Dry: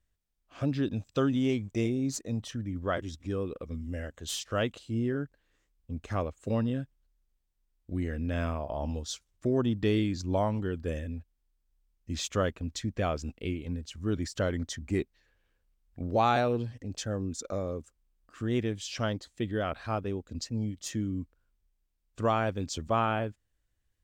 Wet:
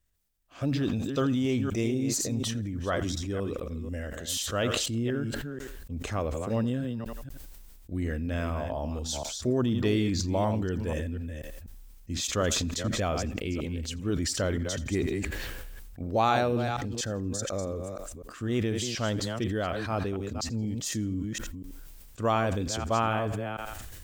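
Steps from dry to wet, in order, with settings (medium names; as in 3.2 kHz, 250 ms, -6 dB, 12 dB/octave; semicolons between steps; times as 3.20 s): chunks repeated in reverse 243 ms, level -9.5 dB; treble shelf 7.3 kHz +8.5 dB; thinning echo 84 ms, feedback 32%, high-pass 420 Hz, level -23 dB; decay stretcher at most 21 dB/s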